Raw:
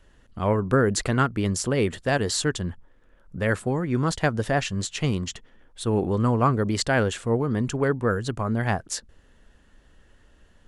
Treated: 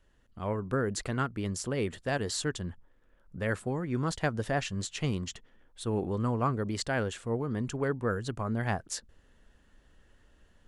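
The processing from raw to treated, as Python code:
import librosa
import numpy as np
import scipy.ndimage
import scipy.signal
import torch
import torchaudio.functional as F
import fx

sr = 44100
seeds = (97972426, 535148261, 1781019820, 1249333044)

y = fx.rider(x, sr, range_db=10, speed_s=2.0)
y = y * 10.0 ** (-7.5 / 20.0)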